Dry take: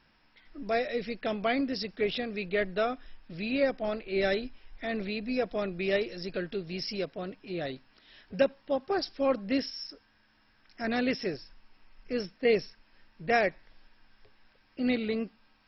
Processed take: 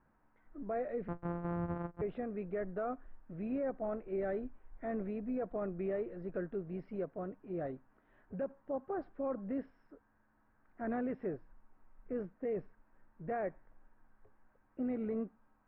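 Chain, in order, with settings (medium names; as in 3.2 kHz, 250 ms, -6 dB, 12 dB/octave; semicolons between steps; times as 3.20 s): 1.08–2.02 s: sorted samples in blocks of 256 samples; low-pass 1.4 kHz 24 dB/octave; peak limiter -25.5 dBFS, peak gain reduction 12 dB; trim -4 dB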